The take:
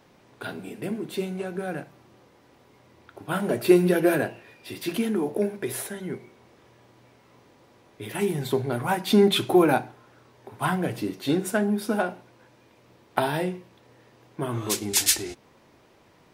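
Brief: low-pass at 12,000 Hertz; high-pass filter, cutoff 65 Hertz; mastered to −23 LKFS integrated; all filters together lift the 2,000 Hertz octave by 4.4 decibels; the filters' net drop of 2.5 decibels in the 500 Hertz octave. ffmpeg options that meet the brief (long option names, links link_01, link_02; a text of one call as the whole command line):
ffmpeg -i in.wav -af "highpass=65,lowpass=12000,equalizer=frequency=500:width_type=o:gain=-4,equalizer=frequency=2000:width_type=o:gain=6.5,volume=3dB" out.wav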